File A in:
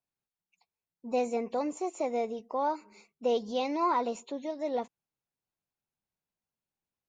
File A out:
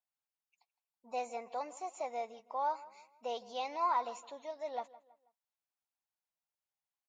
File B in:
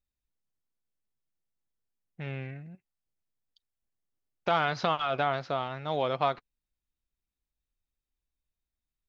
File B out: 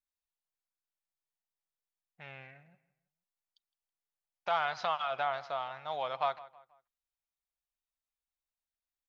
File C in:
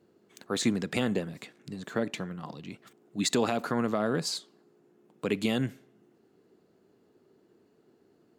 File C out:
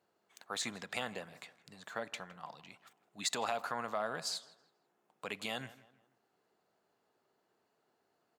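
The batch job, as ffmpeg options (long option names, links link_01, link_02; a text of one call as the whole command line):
ffmpeg -i in.wav -filter_complex "[0:a]lowshelf=frequency=510:width_type=q:width=1.5:gain=-12,asplit=2[link_01][link_02];[link_02]adelay=162,lowpass=frequency=3200:poles=1,volume=-18.5dB,asplit=2[link_03][link_04];[link_04]adelay=162,lowpass=frequency=3200:poles=1,volume=0.39,asplit=2[link_05][link_06];[link_06]adelay=162,lowpass=frequency=3200:poles=1,volume=0.39[link_07];[link_03][link_05][link_07]amix=inputs=3:normalize=0[link_08];[link_01][link_08]amix=inputs=2:normalize=0,volume=-5.5dB" out.wav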